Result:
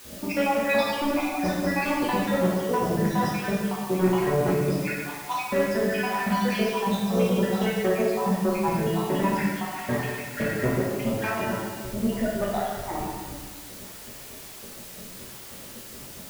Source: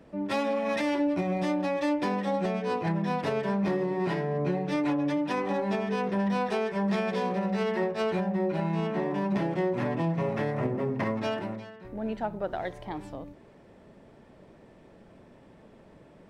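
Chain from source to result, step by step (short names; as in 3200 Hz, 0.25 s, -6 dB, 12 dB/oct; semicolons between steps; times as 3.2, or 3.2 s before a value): random spectral dropouts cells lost 80%; low-pass opened by the level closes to 1100 Hz, open at -28.5 dBFS; bell 420 Hz -4.5 dB 3 oct; de-hum 54.59 Hz, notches 8; sine folder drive 6 dB, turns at -22 dBFS; requantised 8-bit, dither triangular; plate-style reverb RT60 1.6 s, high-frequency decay 0.85×, DRR -4.5 dB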